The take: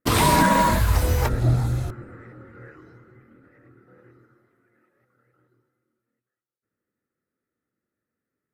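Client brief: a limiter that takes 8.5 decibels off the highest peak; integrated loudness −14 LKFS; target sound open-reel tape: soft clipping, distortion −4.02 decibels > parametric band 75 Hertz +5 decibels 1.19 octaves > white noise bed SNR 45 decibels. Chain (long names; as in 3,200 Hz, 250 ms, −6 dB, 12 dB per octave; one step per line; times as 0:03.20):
brickwall limiter −17 dBFS
soft clipping −38 dBFS
parametric band 75 Hz +5 dB 1.19 octaves
white noise bed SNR 45 dB
level +27 dB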